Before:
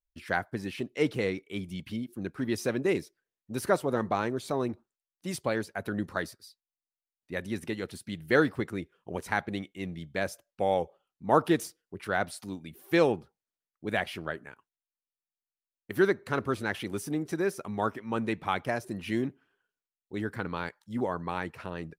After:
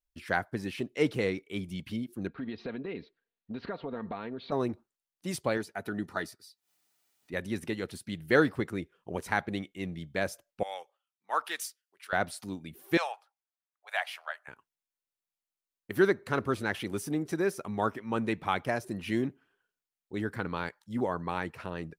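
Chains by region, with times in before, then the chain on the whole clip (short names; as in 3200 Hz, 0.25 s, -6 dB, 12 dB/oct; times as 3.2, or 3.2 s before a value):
2.27–4.52 Chebyshev low-pass 4200 Hz, order 5 + compressor 4:1, threshold -35 dBFS + comb 4.3 ms, depth 40%
5.57–7.34 low shelf 180 Hz -6.5 dB + upward compressor, threshold -53 dBFS + notch comb 540 Hz
10.63–12.13 HPF 1400 Hz + three-band expander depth 40%
12.97–14.48 steep high-pass 660 Hz 48 dB/oct + AM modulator 120 Hz, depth 10% + mismatched tape noise reduction decoder only
whole clip: dry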